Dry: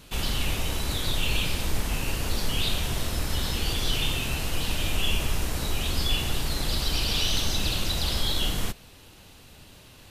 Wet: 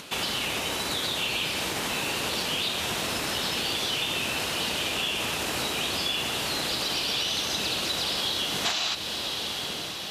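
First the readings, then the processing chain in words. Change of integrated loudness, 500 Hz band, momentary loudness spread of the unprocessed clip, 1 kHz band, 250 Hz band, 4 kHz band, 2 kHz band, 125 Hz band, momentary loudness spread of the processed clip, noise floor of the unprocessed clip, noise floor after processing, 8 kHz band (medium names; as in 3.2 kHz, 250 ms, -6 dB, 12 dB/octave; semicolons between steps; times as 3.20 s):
+1.0 dB, +2.5 dB, 4 LU, +4.0 dB, -1.5 dB, +3.0 dB, +4.0 dB, -10.5 dB, 2 LU, -50 dBFS, -33 dBFS, +1.5 dB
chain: in parallel at +3 dB: peak limiter -22.5 dBFS, peak gain reduction 9.5 dB; on the sum: frequency weighting A; on a send: echo that smears into a reverb 1107 ms, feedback 56%, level -7 dB; on the sum: time-frequency box 8.66–8.94 s, 620–7900 Hz +10 dB; compression 3:1, threshold -25 dBFS, peak gain reduction 7.5 dB; tilt shelf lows +3 dB, about 630 Hz; upward compressor, threshold -41 dBFS; trim +1.5 dB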